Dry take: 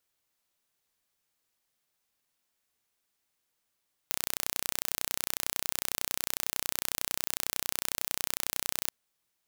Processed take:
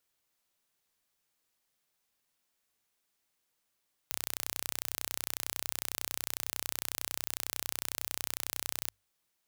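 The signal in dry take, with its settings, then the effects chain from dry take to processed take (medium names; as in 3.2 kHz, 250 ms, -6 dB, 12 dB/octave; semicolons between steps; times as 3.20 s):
pulse train 31 per s, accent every 0, -3 dBFS 4.79 s
saturation -5.5 dBFS; hum notches 50/100 Hz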